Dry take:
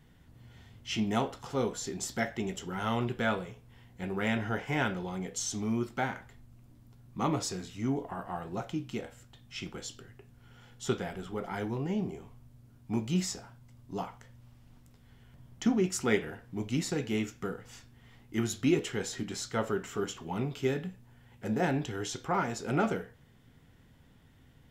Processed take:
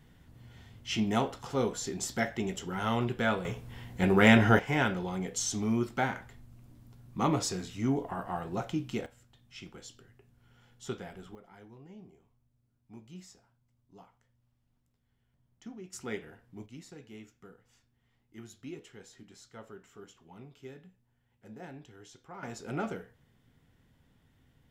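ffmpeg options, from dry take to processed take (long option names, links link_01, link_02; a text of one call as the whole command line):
ffmpeg -i in.wav -af "asetnsamples=nb_out_samples=441:pad=0,asendcmd='3.45 volume volume 10.5dB;4.59 volume volume 2dB;9.06 volume volume -7dB;11.35 volume volume -18.5dB;15.93 volume volume -10dB;16.66 volume volume -17dB;22.43 volume volume -6dB',volume=1dB" out.wav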